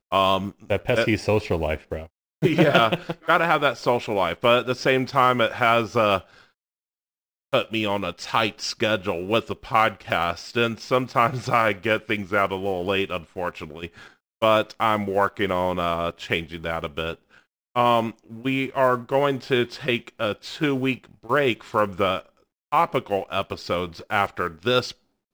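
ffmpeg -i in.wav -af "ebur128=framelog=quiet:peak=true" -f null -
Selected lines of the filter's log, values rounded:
Integrated loudness:
  I:         -23.1 LUFS
  Threshold: -33.5 LUFS
Loudness range:
  LRA:         4.5 LU
  Threshold: -43.5 LUFS
  LRA low:   -25.5 LUFS
  LRA high:  -20.9 LUFS
True peak:
  Peak:       -4.9 dBFS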